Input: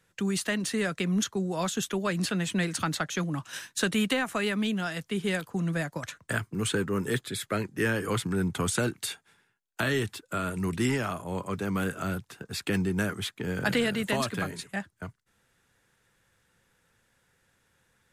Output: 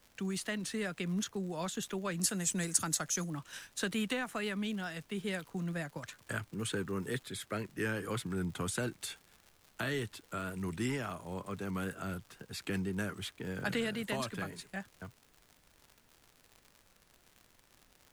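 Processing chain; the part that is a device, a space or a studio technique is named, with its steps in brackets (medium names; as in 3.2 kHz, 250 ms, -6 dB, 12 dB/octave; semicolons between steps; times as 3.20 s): 2.21–3.30 s: resonant high shelf 4.8 kHz +12 dB, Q 1.5; vinyl LP (wow and flutter; crackle 110 per s -37 dBFS; pink noise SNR 30 dB); trim -8 dB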